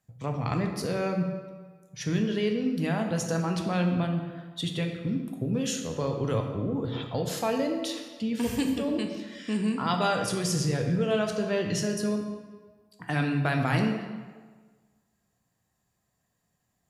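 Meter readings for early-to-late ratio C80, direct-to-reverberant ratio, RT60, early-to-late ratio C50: 7.0 dB, 3.0 dB, 1.5 s, 5.5 dB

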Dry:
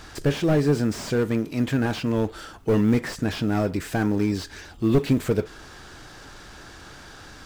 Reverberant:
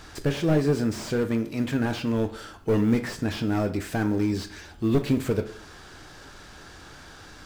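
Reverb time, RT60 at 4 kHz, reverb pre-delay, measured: 0.55 s, 0.40 s, 9 ms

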